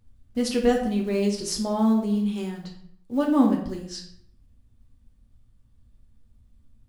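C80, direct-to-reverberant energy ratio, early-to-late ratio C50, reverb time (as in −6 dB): 9.5 dB, −0.5 dB, 6.0 dB, 0.65 s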